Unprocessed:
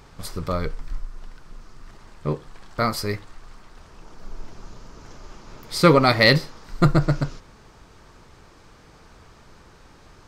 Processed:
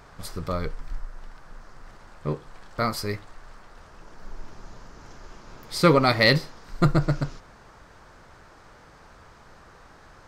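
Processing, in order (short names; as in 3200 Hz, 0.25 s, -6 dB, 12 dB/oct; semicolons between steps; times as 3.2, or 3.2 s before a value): band noise 460–1700 Hz -52 dBFS; gain -3 dB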